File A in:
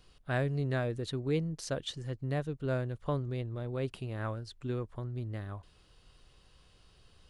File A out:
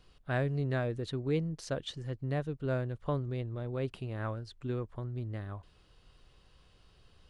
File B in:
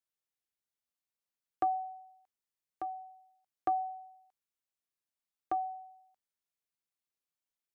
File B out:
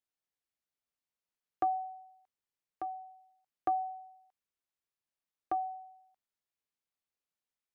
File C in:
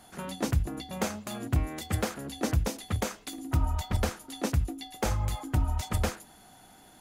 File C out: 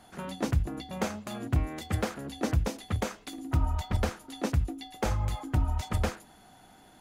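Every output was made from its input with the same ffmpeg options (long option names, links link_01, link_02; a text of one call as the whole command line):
ffmpeg -i in.wav -af "highshelf=frequency=5900:gain=-8" out.wav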